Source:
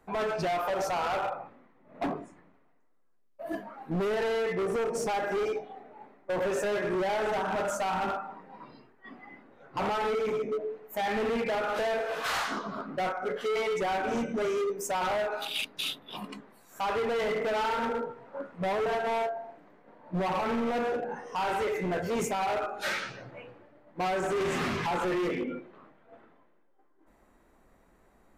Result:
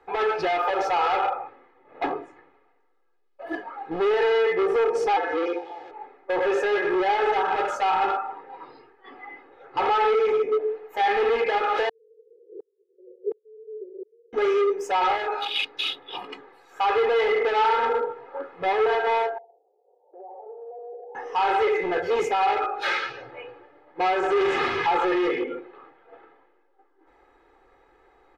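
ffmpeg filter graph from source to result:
-filter_complex "[0:a]asettb=1/sr,asplit=3[a][b][c];[a]atrim=end=5.164[d];[b]atrim=start=5.16:end=5.91,asetpts=PTS-STARTPTS,afade=t=in:d=0.004:c=qsin,afade=t=out:st=0.746:d=0.004:c=qsin,aeval=exprs='val(0)+0.5*0.00473*sgn(val(0))':c=same,aeval=exprs='val(0)*sin(2*PI*86*n/s)':c=same,highpass=190,lowpass=6.8k[e];[c]atrim=start=5.906[f];[d][e]acrossfade=d=0.004:c1=hsin:c2=qsin[g];[g][f]acrossfade=d=0.004:c1=qsin:c2=hsin,asettb=1/sr,asplit=3[h][i][j];[h]atrim=end=11.894[k];[i]atrim=start=11.89:end=14.33,asetpts=PTS-STARTPTS,afade=t=in:d=0.004:c=qsin,afade=t=out:st=2.436:d=0.004:c=qsin,asuperpass=centerf=420:order=12:qfactor=2.6,aeval=exprs='val(0)*pow(10,-38*if(lt(mod(-1.4*n/s,1),2*abs(-1.4)/1000),1-mod(-1.4*n/s,1)/(2*abs(-1.4)/1000),(mod(-1.4*n/s,1)-2*abs(-1.4)/1000)/(1-2*abs(-1.4)/1000))/20)':c=same[l];[j]atrim=start=14.326[m];[k][l]acrossfade=d=0.004:c1=hsin:c2=qsin[n];[n][m]acrossfade=d=0.004:c1=qsin:c2=hsin,asettb=1/sr,asplit=3[o][p][q];[o]atrim=end=19.384[r];[p]atrim=start=19.38:end=21.15,asetpts=PTS-STARTPTS,afade=t=in:d=0.004:c=qsin,afade=t=out:st=1.766:d=0.004:c=qsin,agate=range=-11dB:threshold=-43dB:ratio=16:release=100:detection=peak,asuperpass=centerf=550:order=8:qfactor=1.4,acompressor=threshold=-53dB:ratio=2.5:attack=3.2:release=140:knee=1:detection=peak[s];[q]atrim=start=21.146[t];[r][s]acrossfade=d=0.004:c1=hsin:c2=qsin[u];[u][t]acrossfade=d=0.004:c1=qsin:c2=hsin,acrossover=split=330 4600:gain=0.251 1 0.0794[v][w][x];[v][w][x]amix=inputs=3:normalize=0,aecho=1:1:2.4:0.78,volume=5.5dB"

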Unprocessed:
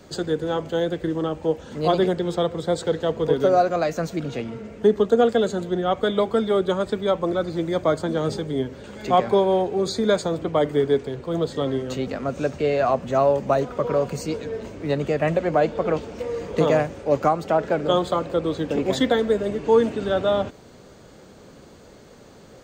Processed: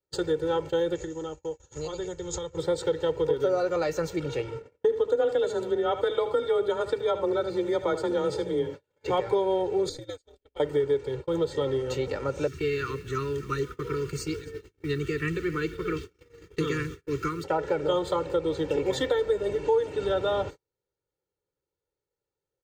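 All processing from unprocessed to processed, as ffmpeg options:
-filter_complex "[0:a]asettb=1/sr,asplit=3[a][b][c];[a]atrim=end=0.954[d];[b]atrim=start=0.95:end=2.57,asetpts=PTS-STARTPTS,afade=t=in:d=0.004:c=qsin,afade=t=out:st=1.616:d=0.004:c=qsin,asubboost=boost=9:cutoff=110,acompressor=threshold=-29dB:ratio=8:attack=3.2:release=140:knee=1:detection=peak,lowpass=f=6.8k:t=q:w=15[e];[c]atrim=start=2.566[f];[d][e]acrossfade=d=0.004:c1=hsin:c2=qsin[g];[g][f]acrossfade=d=0.004:c1=qsin:c2=hsin,asettb=1/sr,asplit=3[h][i][j];[h]atrim=end=4.624[k];[i]atrim=start=4.62:end=9.1,asetpts=PTS-STARTPTS,afade=t=in:d=0.004:c=qsin,afade=t=out:st=4.476:d=0.004:c=qsin,highshelf=f=4.8k:g=-3,afreqshift=24,aecho=1:1:76:0.237,atrim=end_sample=197568[l];[j]atrim=start=9.096[m];[k][l]acrossfade=d=0.004:c1=hsin:c2=qsin[n];[n][m]acrossfade=d=0.004:c1=qsin:c2=hsin,asettb=1/sr,asplit=3[o][p][q];[o]atrim=end=9.894[r];[p]atrim=start=9.89:end=10.6,asetpts=PTS-STARTPTS,afade=t=in:d=0.004:c=qsin,afade=t=out:st=0.706:d=0.004:c=qsin,equalizer=f=1k:t=o:w=0.72:g=-13,acrossover=split=1500|5000[s][t][u];[s]acompressor=threshold=-33dB:ratio=4[v];[t]acompressor=threshold=-40dB:ratio=4[w];[u]acompressor=threshold=-38dB:ratio=4[x];[v][w][x]amix=inputs=3:normalize=0,aeval=exprs='val(0)*sin(2*PI*100*n/s)':c=same[y];[q]atrim=start=10.596[z];[r][y]acrossfade=d=0.004:c1=hsin:c2=qsin[aa];[aa][z]acrossfade=d=0.004:c1=qsin:c2=hsin,asettb=1/sr,asplit=3[ab][ac][ad];[ab]atrim=end=12.474[ae];[ac]atrim=start=12.47:end=17.44,asetpts=PTS-STARTPTS,afade=t=in:d=0.004:c=qsin,afade=t=out:st=4.966:d=0.004:c=qsin,asuperstop=centerf=690:order=8:qfactor=0.92,acrusher=bits=8:mix=0:aa=0.5,aecho=1:1:259:0.133,atrim=end_sample=219177[af];[ad]atrim=start=17.436[ag];[ae][af]acrossfade=d=0.004:c1=hsin:c2=qsin[ah];[ah][ag]acrossfade=d=0.004:c1=qsin:c2=hsin,agate=range=-41dB:threshold=-33dB:ratio=16:detection=peak,aecho=1:1:2.2:0.99,acompressor=threshold=-19dB:ratio=3,volume=-4dB"

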